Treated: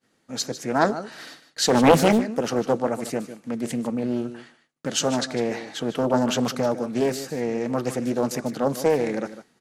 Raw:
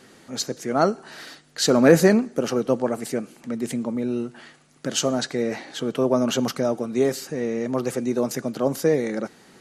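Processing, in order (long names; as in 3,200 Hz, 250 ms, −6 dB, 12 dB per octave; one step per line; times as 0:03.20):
downward expander −39 dBFS
notch filter 390 Hz, Q 13
on a send: single-tap delay 151 ms −13 dB
on the sum: highs frequency-modulated by the lows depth 0.64 ms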